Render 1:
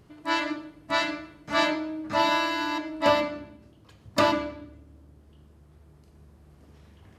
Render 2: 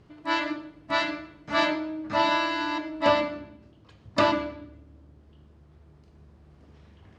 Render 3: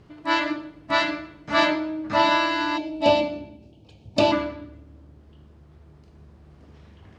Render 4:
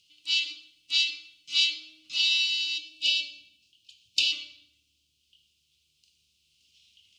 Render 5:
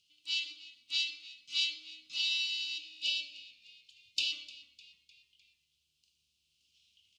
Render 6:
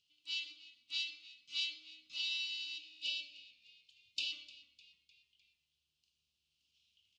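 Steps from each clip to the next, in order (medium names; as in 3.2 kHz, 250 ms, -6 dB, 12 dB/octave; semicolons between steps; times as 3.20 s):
low-pass 5.3 kHz 12 dB/octave
time-frequency box 2.77–4.31 s, 930–2200 Hz -15 dB; trim +4 dB
elliptic high-pass 2.8 kHz, stop band 40 dB; trim +6.5 dB
frequency-shifting echo 303 ms, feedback 52%, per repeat -64 Hz, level -19 dB; trim -8 dB
treble shelf 8.1 kHz -11 dB; trim -4.5 dB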